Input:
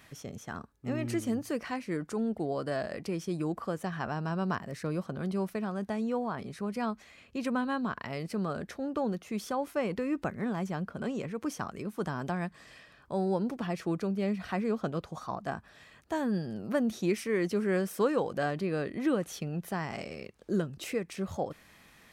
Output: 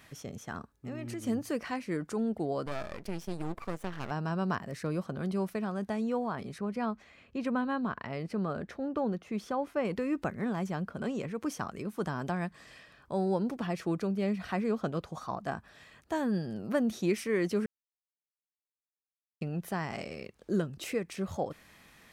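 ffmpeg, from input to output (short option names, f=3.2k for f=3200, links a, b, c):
-filter_complex "[0:a]asettb=1/sr,asplit=3[a][b][c];[a]atrim=end=0.714[d];[b]atrim=start=0.71:end=1.24,asetpts=PTS-STARTPTS,afade=t=in:d=0.004:c=qsin,afade=t=out:st=0.526:d=0.004:c=qsin,acompressor=threshold=-37dB:ratio=3:attack=3.2:release=140:knee=1:detection=peak[e];[c]atrim=start=1.236[f];[d][e]acrossfade=d=0.004:c1=hsin:c2=qsin[g];[g][f]acrossfade=d=0.004:c1=qsin:c2=hsin,asettb=1/sr,asplit=3[h][i][j];[h]atrim=end=2.664[k];[i]atrim=start=2.66:end=4.11,asetpts=PTS-STARTPTS,afade=t=in:d=0.004:c=qsin,afade=t=out:st=1.446:d=0.004:c=qsin,aeval=exprs='max(val(0),0)':c=same[l];[j]atrim=start=4.106[m];[k][l]acrossfade=d=0.004:c1=hsin:c2=qsin[n];[n][m]acrossfade=d=0.004:c1=qsin:c2=hsin,asettb=1/sr,asplit=3[o][p][q];[o]atrim=end=6.584[r];[p]atrim=start=6.58:end=9.85,asetpts=PTS-STARTPTS,afade=t=in:d=0.004:c=qsin,afade=t=out:st=3.266:d=0.004:c=qsin,lowpass=f=2.6k:p=1[s];[q]atrim=start=9.846[t];[r][s]acrossfade=d=0.004:c1=hsin:c2=qsin[u];[u][t]acrossfade=d=0.004:c1=qsin:c2=hsin,asplit=3[v][w][x];[v]atrim=end=17.66,asetpts=PTS-STARTPTS,afade=t=out:st=17.656:d=0.004:c=hsin[y];[w]atrim=start=17.66:end=19.41,asetpts=PTS-STARTPTS,volume=0[z];[x]atrim=start=19.41,asetpts=PTS-STARTPTS,afade=t=in:d=0.004:c=hsin[aa];[y][z][aa]concat=n=3:v=0:a=1"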